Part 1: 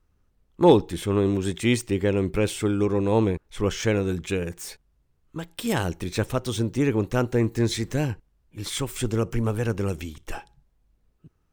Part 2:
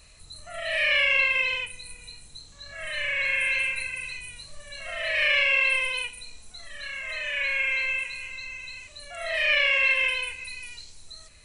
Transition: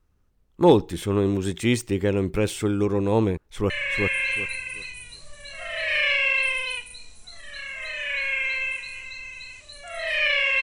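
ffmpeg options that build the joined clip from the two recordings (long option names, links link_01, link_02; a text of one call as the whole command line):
ffmpeg -i cue0.wav -i cue1.wav -filter_complex "[0:a]apad=whole_dur=10.62,atrim=end=10.62,atrim=end=3.702[link_01];[1:a]atrim=start=2.968:end=9.89[link_02];[link_01][link_02]acrossfade=duration=0.004:curve1=hsin:curve2=hsin,asplit=2[link_03][link_04];[link_04]afade=type=in:start_time=3.39:duration=0.01,afade=type=out:start_time=3.7:duration=0.01,aecho=0:1:380|760|1140|1520:0.749894|0.187474|0.0468684|0.0117171[link_05];[link_03][link_05]amix=inputs=2:normalize=0" out.wav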